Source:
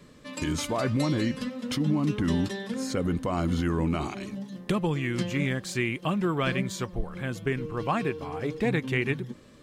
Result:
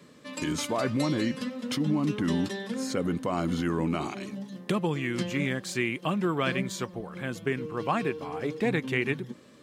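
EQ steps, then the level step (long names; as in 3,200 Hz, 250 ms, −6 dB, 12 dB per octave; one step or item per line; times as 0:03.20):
high-pass filter 150 Hz 12 dB per octave
0.0 dB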